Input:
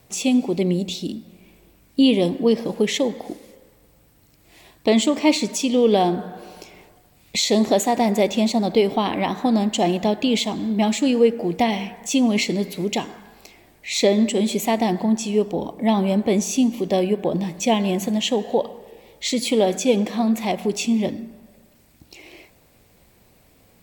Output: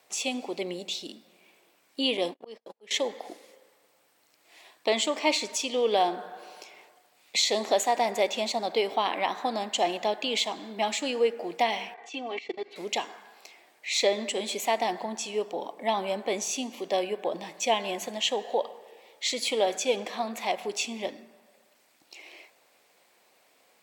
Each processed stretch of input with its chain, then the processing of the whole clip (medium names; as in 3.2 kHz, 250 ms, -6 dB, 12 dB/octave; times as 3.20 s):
2.17–2.91 s: gate -24 dBFS, range -41 dB + slow attack 438 ms
11.94–12.76 s: low-pass 2.9 kHz + level held to a coarse grid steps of 22 dB + comb 2.6 ms, depth 86%
whole clip: high-pass 610 Hz 12 dB/octave; treble shelf 11 kHz -11 dB; trim -2 dB